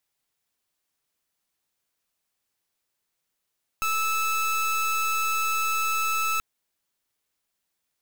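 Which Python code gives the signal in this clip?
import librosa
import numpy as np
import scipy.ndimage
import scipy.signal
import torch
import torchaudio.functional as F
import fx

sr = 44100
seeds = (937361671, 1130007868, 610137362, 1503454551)

y = fx.pulse(sr, length_s=2.58, hz=1310.0, level_db=-25.0, duty_pct=28)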